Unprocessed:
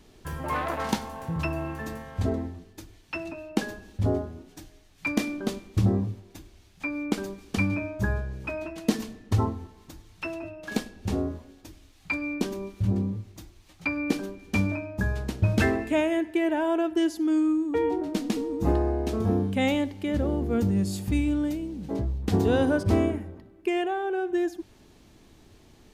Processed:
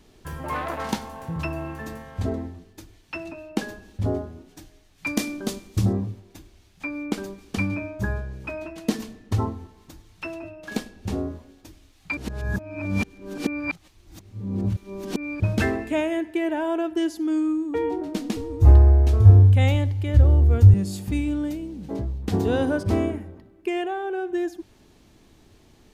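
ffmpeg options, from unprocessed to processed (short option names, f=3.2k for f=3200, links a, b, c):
-filter_complex "[0:a]asettb=1/sr,asplit=3[a][b][c];[a]atrim=end=5.064[d];[b]atrim=start=5.06:end=5.93,asetpts=PTS-STARTPTS,afade=t=in:d=0.004:c=qsin,afade=t=out:st=0.866:d=0.004:c=qsin,bass=f=250:g=1,treble=f=4k:g=8[e];[c]atrim=start=5.926[f];[d][e]acrossfade=d=0.004:c1=hsin:c2=qsin[g];[g][f]acrossfade=d=0.004:c1=qsin:c2=hsin,asettb=1/sr,asplit=3[h][i][j];[h]atrim=end=18.364[k];[i]atrim=start=18.36:end=20.74,asetpts=PTS-STARTPTS,afade=t=in:d=0.004:c=qsin,afade=t=out:st=2.376:d=0.004:c=qsin,lowshelf=f=140:t=q:w=3:g=12[l];[j]atrim=start=20.736[m];[k][l]acrossfade=d=0.004:c1=hsin:c2=qsin[n];[n][m]acrossfade=d=0.004:c1=qsin:c2=hsin,asplit=3[o][p][q];[o]atrim=end=12.172[r];[p]atrim=start=12.168:end=15.402,asetpts=PTS-STARTPTS,areverse[s];[q]atrim=start=15.398[t];[r][s]acrossfade=d=0.004:c1=hsin:c2=hsin[u];[u][t]acrossfade=d=0.004:c1=hsin:c2=hsin"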